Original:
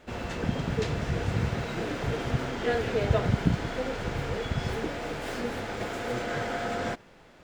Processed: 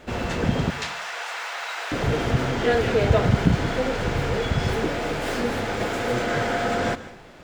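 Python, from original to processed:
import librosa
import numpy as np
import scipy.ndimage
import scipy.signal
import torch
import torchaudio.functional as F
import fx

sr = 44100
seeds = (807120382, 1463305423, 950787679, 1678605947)

p1 = fx.highpass(x, sr, hz=800.0, slope=24, at=(0.7, 1.92))
p2 = 10.0 ** (-26.5 / 20.0) * np.tanh(p1 / 10.0 ** (-26.5 / 20.0))
p3 = p1 + (p2 * librosa.db_to_amplitude(-5.0))
p4 = fx.rev_plate(p3, sr, seeds[0], rt60_s=0.55, hf_ratio=0.95, predelay_ms=115, drr_db=14.5)
y = p4 * librosa.db_to_amplitude(4.0)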